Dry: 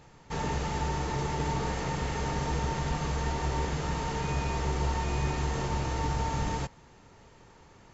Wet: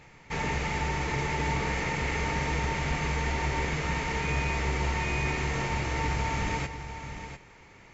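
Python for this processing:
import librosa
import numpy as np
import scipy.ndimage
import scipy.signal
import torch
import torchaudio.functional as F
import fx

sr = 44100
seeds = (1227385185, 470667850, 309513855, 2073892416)

p1 = fx.peak_eq(x, sr, hz=2200.0, db=13.0, octaves=0.54)
y = p1 + fx.echo_single(p1, sr, ms=698, db=-10.0, dry=0)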